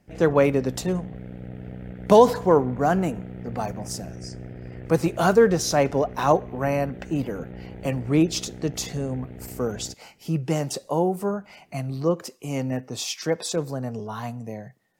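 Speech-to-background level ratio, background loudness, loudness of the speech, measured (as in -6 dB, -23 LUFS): 15.5 dB, -39.5 LUFS, -24.0 LUFS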